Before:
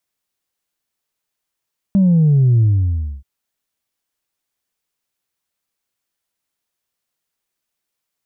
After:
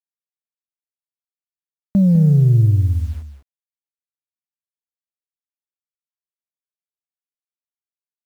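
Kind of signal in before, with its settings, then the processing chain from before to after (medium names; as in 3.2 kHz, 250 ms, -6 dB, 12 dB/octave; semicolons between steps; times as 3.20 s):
sub drop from 200 Hz, over 1.28 s, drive 0.5 dB, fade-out 0.62 s, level -9.5 dB
local Wiener filter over 41 samples; bit crusher 8-bit; on a send: delay 202 ms -10 dB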